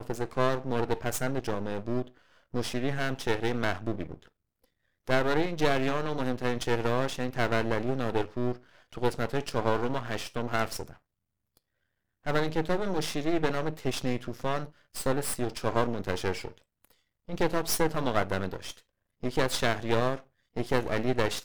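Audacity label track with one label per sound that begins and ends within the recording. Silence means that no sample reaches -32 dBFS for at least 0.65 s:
5.080000	10.830000	sound
12.270000	16.480000	sound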